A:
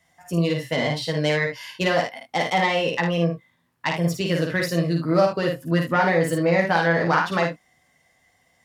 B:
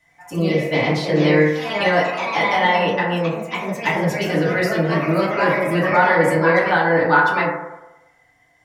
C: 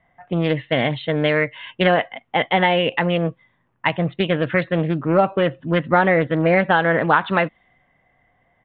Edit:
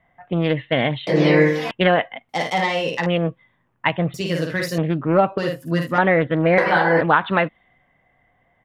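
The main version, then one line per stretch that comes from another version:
C
1.07–1.71 s: from B
2.29–3.06 s: from A
4.14–4.78 s: from A
5.38–5.98 s: from A
6.58–7.01 s: from B

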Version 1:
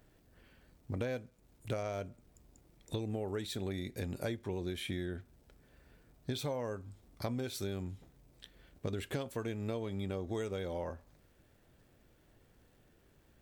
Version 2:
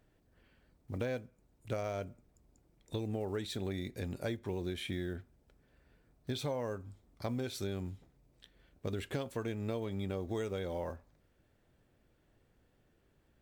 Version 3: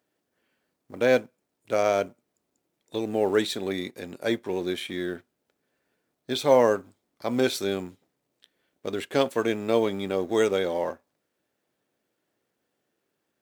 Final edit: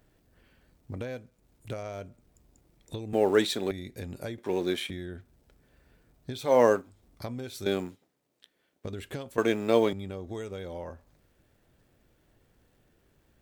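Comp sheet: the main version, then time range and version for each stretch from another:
1
3.13–3.71 s: from 3
4.38–4.90 s: from 3
6.51–6.91 s: from 3, crossfade 0.24 s
7.66–8.85 s: from 3
9.38–9.93 s: from 3
not used: 2

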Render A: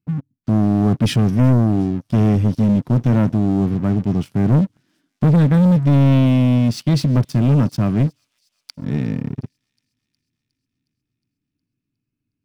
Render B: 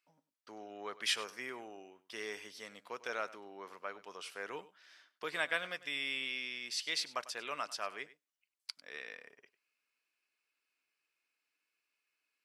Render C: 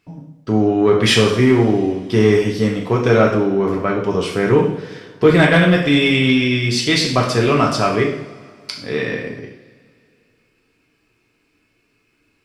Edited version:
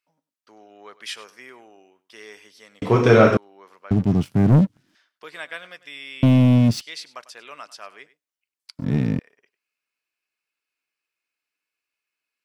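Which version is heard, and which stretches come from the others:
B
2.82–3.37 s: from C
3.91–4.95 s: from A
6.23–6.81 s: from A
8.79–9.19 s: from A

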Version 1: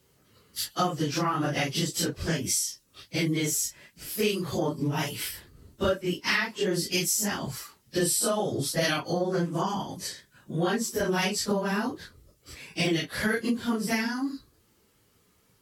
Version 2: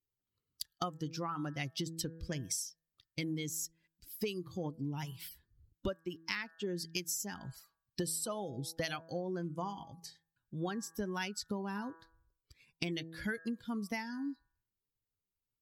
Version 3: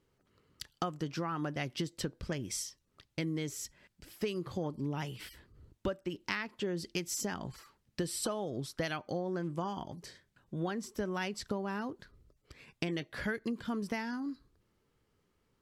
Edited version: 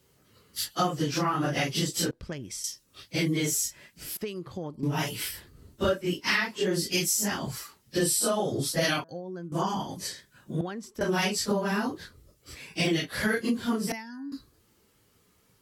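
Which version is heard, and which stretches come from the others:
1
2.11–2.64 s: from 3
4.17–4.83 s: from 3
9.04–9.52 s: from 2
10.61–11.01 s: from 3
13.92–14.32 s: from 2

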